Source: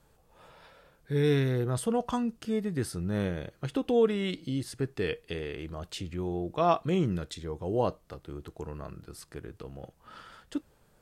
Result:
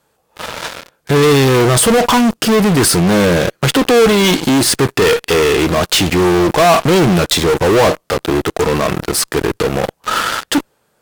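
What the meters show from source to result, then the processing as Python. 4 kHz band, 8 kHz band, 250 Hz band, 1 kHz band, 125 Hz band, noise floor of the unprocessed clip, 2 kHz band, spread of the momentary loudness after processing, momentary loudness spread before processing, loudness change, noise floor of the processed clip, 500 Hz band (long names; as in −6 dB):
+26.0 dB, +28.5 dB, +18.0 dB, +19.5 dB, +15.5 dB, −65 dBFS, +24.5 dB, 8 LU, 19 LU, +18.0 dB, −62 dBFS, +18.5 dB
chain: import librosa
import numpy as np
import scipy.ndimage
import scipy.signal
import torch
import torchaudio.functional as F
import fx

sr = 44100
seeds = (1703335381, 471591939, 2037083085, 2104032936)

p1 = fx.highpass(x, sr, hz=350.0, slope=6)
p2 = fx.fuzz(p1, sr, gain_db=51.0, gate_db=-54.0)
p3 = p1 + F.gain(torch.from_numpy(p2), -4.5).numpy()
y = F.gain(torch.from_numpy(p3), 7.0).numpy()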